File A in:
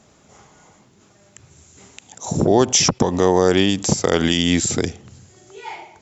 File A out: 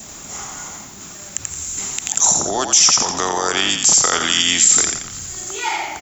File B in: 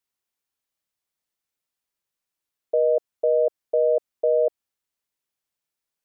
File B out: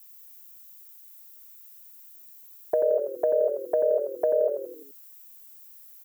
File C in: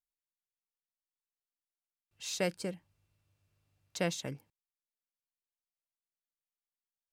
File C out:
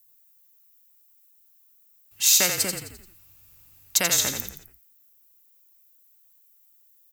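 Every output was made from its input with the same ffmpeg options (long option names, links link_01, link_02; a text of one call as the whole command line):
ffmpeg -i in.wav -filter_complex "[0:a]acompressor=threshold=-36dB:ratio=2,equalizer=frequency=125:width_type=o:width=1:gain=-7,equalizer=frequency=500:width_type=o:width=1:gain=-8,equalizer=frequency=8000:width_type=o:width=1:gain=11,asplit=2[link_01][link_02];[link_02]asplit=5[link_03][link_04][link_05][link_06][link_07];[link_03]adelay=86,afreqshift=-40,volume=-6dB[link_08];[link_04]adelay=172,afreqshift=-80,volume=-12.9dB[link_09];[link_05]adelay=258,afreqshift=-120,volume=-19.9dB[link_10];[link_06]adelay=344,afreqshift=-160,volume=-26.8dB[link_11];[link_07]adelay=430,afreqshift=-200,volume=-33.7dB[link_12];[link_08][link_09][link_10][link_11][link_12]amix=inputs=5:normalize=0[link_13];[link_01][link_13]amix=inputs=2:normalize=0,aexciter=amount=11.5:drive=4.1:freq=12000,acrossover=split=480|3000[link_14][link_15][link_16];[link_14]acompressor=threshold=-54dB:ratio=2.5[link_17];[link_17][link_15][link_16]amix=inputs=3:normalize=0,adynamicequalizer=threshold=0.00112:dfrequency=1300:dqfactor=4.8:tfrequency=1300:tqfactor=4.8:attack=5:release=100:ratio=0.375:range=3:mode=boostabove:tftype=bell,alimiter=level_in=16.5dB:limit=-1dB:release=50:level=0:latency=1,volume=-1dB" out.wav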